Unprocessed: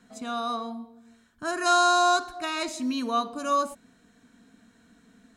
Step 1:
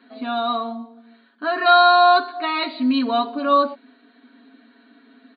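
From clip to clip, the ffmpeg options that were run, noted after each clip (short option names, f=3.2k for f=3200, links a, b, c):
-af "afftfilt=real='re*between(b*sr/4096,200,4700)':imag='im*between(b*sr/4096,200,4700)':win_size=4096:overlap=0.75,aecho=1:1:7.3:0.87,volume=5dB"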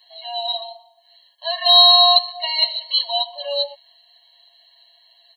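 -af "aexciter=amount=10:drive=4.6:freq=2.9k,afftfilt=real='re*eq(mod(floor(b*sr/1024/550),2),1)':imag='im*eq(mod(floor(b*sr/1024/550),2),1)':win_size=1024:overlap=0.75,volume=-4dB"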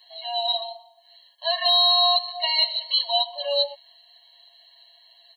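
-af "alimiter=limit=-11dB:level=0:latency=1:release=169"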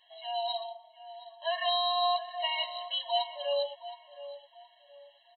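-filter_complex "[0:a]aresample=8000,aresample=44100,asplit=2[a][b];[b]adelay=719,lowpass=f=2.2k:p=1,volume=-13dB,asplit=2[c][d];[d]adelay=719,lowpass=f=2.2k:p=1,volume=0.33,asplit=2[e][f];[f]adelay=719,lowpass=f=2.2k:p=1,volume=0.33[g];[a][c][e][g]amix=inputs=4:normalize=0,volume=-4.5dB"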